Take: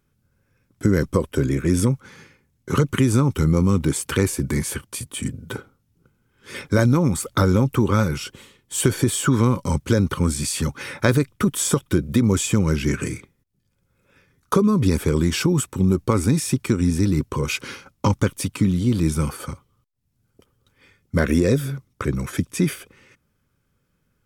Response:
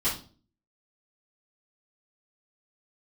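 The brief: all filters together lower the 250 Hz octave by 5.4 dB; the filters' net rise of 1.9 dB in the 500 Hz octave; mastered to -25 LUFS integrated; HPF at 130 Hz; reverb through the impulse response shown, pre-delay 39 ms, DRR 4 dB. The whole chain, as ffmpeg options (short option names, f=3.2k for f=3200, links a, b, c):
-filter_complex "[0:a]highpass=130,equalizer=f=250:t=o:g=-8.5,equalizer=f=500:t=o:g=5.5,asplit=2[a][b];[1:a]atrim=start_sample=2205,adelay=39[c];[b][c]afir=irnorm=-1:irlink=0,volume=-13dB[d];[a][d]amix=inputs=2:normalize=0,volume=-3dB"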